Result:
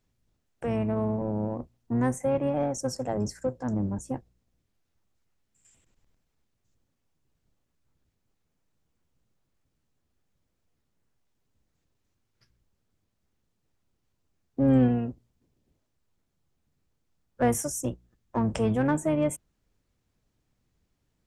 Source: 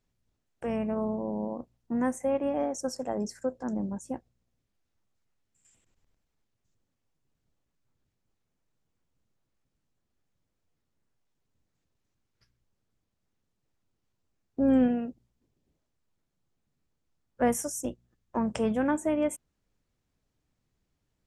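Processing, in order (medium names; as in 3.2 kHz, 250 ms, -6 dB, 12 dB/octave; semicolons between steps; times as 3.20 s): octave divider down 1 oct, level -3 dB; in parallel at -8.5 dB: saturation -30 dBFS, distortion -6 dB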